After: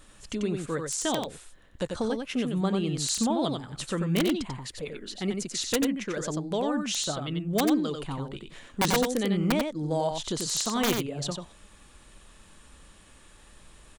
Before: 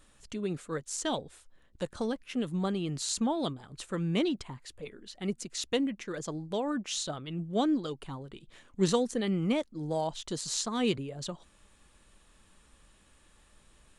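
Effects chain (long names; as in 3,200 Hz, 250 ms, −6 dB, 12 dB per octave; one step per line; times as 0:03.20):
in parallel at +2 dB: downward compressor 8 to 1, threshold −38 dBFS, peak gain reduction 17 dB
on the sum: wrap-around overflow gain 17.5 dB
single-tap delay 91 ms −5 dB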